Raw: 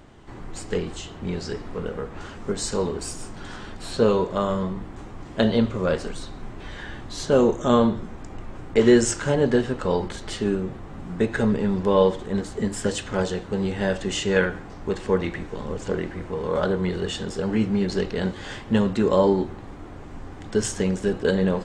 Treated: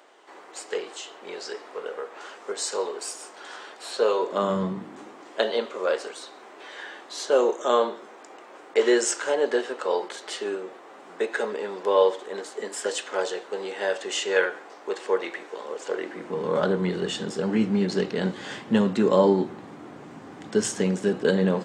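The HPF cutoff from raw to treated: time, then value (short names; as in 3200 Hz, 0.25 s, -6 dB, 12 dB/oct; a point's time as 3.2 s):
HPF 24 dB/oct
4.18 s 430 Hz
4.61 s 120 Hz
5.35 s 400 Hz
15.95 s 400 Hz
16.42 s 150 Hz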